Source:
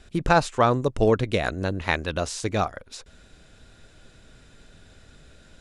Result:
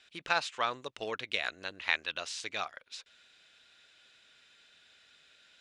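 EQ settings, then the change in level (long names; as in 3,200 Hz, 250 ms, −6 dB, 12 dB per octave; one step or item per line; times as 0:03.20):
resonant band-pass 3,000 Hz, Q 1.3
0.0 dB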